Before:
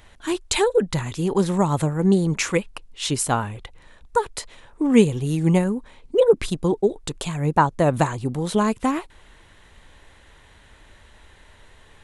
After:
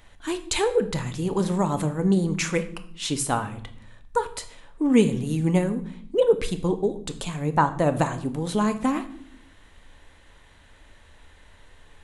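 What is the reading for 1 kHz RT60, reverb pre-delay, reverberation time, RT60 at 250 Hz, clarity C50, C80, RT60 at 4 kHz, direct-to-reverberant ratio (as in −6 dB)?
0.55 s, 3 ms, 0.60 s, 1.0 s, 13.5 dB, 17.0 dB, 0.50 s, 8.5 dB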